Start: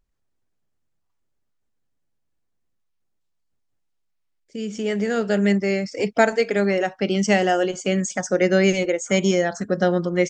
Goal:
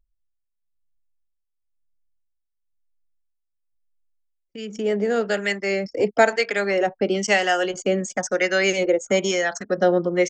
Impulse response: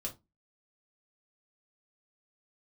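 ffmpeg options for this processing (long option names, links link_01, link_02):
-filter_complex "[0:a]anlmdn=2.51,acrossover=split=300|610|1900[link_01][link_02][link_03][link_04];[link_01]acompressor=threshold=-36dB:ratio=6[link_05];[link_05][link_02][link_03][link_04]amix=inputs=4:normalize=0,acrossover=split=890[link_06][link_07];[link_06]aeval=exprs='val(0)*(1-0.7/2+0.7/2*cos(2*PI*1*n/s))':channel_layout=same[link_08];[link_07]aeval=exprs='val(0)*(1-0.7/2-0.7/2*cos(2*PI*1*n/s))':channel_layout=same[link_09];[link_08][link_09]amix=inputs=2:normalize=0,volume=5dB"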